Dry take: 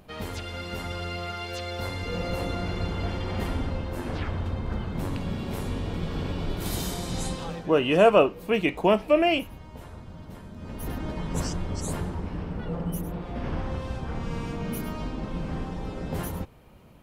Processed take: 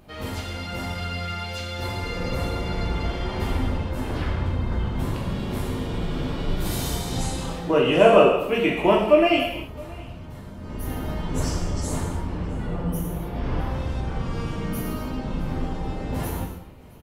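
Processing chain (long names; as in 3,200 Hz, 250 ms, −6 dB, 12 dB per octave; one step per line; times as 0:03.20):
on a send: single-tap delay 666 ms −24 dB
on the sum: reverb whose tail is shaped and stops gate 320 ms falling, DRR −2.5 dB
level −1 dB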